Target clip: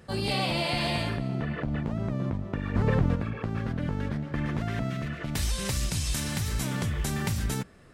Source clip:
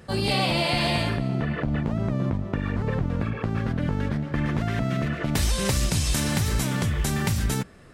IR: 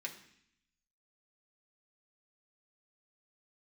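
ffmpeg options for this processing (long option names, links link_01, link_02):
-filter_complex "[0:a]asplit=3[link_01][link_02][link_03];[link_01]afade=type=out:start_time=2.74:duration=0.02[link_04];[link_02]acontrast=75,afade=type=in:start_time=2.74:duration=0.02,afade=type=out:start_time=3.14:duration=0.02[link_05];[link_03]afade=type=in:start_time=3.14:duration=0.02[link_06];[link_04][link_05][link_06]amix=inputs=3:normalize=0,asettb=1/sr,asplit=3[link_07][link_08][link_09];[link_07]atrim=end=4.904[link_10];[link_08]atrim=start=4.9:end=6.61,asetpts=PTS-STARTPTS,afade=type=in:duration=0.004:curve=qsin,afade=type=out:start_time=1.706:duration=0.004:curve=qsin,equalizer=frequency=460:width_type=o:width=2.9:gain=-4.5[link_11];[link_09]atrim=start=6.606[link_12];[link_10][link_11]acrossfade=duration=0.004:curve1=hsin:curve2=qsin[link_13];[link_13][link_12]acrossfade=duration=0.004:curve1=qsin:curve2=hsin,volume=-4.5dB"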